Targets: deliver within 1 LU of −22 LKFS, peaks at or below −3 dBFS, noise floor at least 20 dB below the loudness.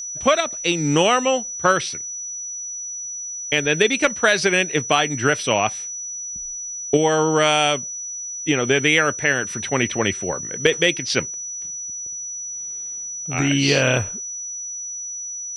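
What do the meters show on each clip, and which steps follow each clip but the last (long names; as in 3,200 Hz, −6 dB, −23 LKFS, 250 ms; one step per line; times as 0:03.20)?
interfering tone 5,900 Hz; level of the tone −28 dBFS; integrated loudness −20.5 LKFS; sample peak −4.0 dBFS; target loudness −22.0 LKFS
→ notch filter 5,900 Hz, Q 30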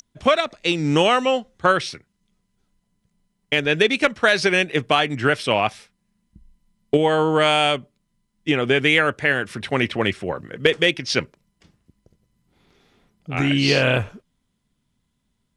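interfering tone none found; integrated loudness −19.5 LKFS; sample peak −4.5 dBFS; target loudness −22.0 LKFS
→ level −2.5 dB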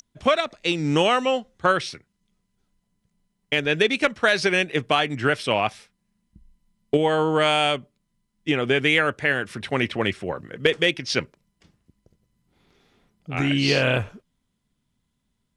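integrated loudness −22.0 LKFS; sample peak −7.0 dBFS; background noise floor −75 dBFS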